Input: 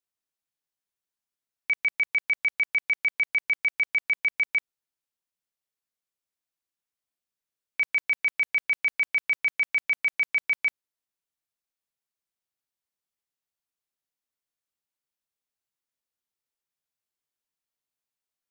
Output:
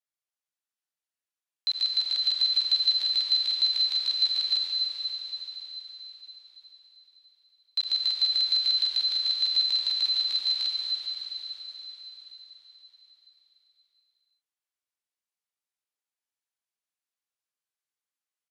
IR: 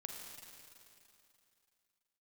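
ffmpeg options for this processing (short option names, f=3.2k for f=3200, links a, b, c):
-filter_complex "[0:a]highpass=f=390:p=1,highshelf=f=3.9k:g=-3,asetrate=78577,aresample=44100,atempo=0.561231[a];[1:a]atrim=start_sample=2205,asetrate=25137,aresample=44100[b];[a][b]afir=irnorm=-1:irlink=0,volume=1dB"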